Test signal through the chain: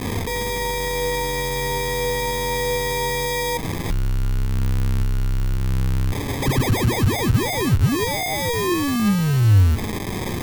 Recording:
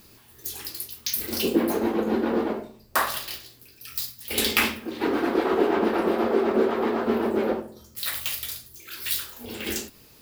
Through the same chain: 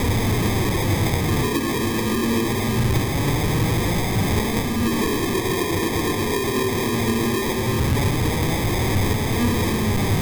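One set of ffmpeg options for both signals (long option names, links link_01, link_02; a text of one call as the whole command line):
ffmpeg -i in.wav -af "aeval=exprs='val(0)+0.5*0.112*sgn(val(0))':channel_layout=same,acompressor=threshold=-24dB:ratio=6,acrusher=samples=31:mix=1:aa=0.000001,flanger=delay=4:depth=4.8:regen=70:speed=0.21:shape=triangular,equalizer=frequency=100:width_type=o:width=0.67:gain=11,equalizer=frequency=630:width_type=o:width=0.67:gain=-10,equalizer=frequency=16000:width_type=o:width=0.67:gain=5,volume=9dB" out.wav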